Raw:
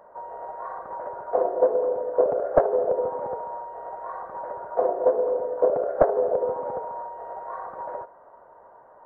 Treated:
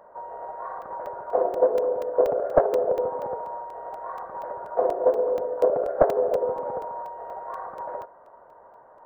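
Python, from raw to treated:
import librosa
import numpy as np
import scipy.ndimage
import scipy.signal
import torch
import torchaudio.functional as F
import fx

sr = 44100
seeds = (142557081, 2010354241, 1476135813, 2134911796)

y = fx.buffer_crackle(x, sr, first_s=0.82, period_s=0.24, block=128, kind='zero')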